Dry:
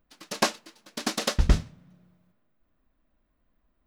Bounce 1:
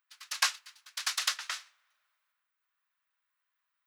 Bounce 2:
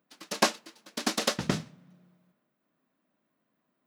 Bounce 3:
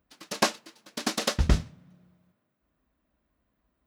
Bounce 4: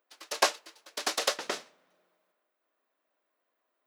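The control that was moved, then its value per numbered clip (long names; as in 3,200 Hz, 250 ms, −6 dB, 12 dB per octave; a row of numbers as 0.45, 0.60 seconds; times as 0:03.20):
high-pass filter, corner frequency: 1,200, 150, 46, 410 Hertz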